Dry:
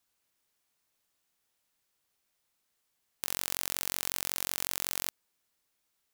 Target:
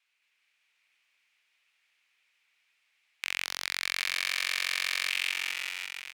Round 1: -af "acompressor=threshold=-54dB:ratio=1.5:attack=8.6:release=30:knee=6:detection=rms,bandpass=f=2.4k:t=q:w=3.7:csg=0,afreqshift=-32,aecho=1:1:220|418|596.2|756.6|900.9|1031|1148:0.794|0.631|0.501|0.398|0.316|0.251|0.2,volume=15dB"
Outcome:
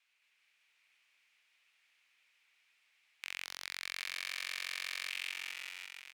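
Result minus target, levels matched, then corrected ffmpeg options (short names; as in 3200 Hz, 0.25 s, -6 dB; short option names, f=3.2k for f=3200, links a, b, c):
compressor: peak gain reduction +10 dB
-af "bandpass=f=2.4k:t=q:w=3.7:csg=0,afreqshift=-32,aecho=1:1:220|418|596.2|756.6|900.9|1031|1148:0.794|0.631|0.501|0.398|0.316|0.251|0.2,volume=15dB"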